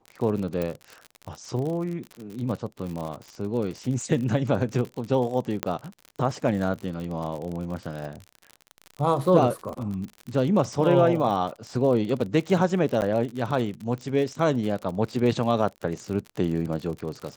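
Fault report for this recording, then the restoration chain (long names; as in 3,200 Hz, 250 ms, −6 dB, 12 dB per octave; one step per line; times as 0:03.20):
surface crackle 53 per second −31 dBFS
0:00.62: click
0:05.63: click −9 dBFS
0:13.01–0:13.02: drop-out 9.4 ms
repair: click removal
repair the gap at 0:13.01, 9.4 ms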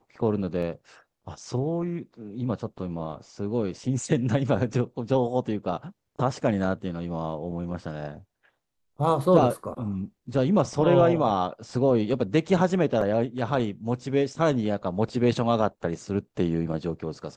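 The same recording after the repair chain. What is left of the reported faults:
0:00.62: click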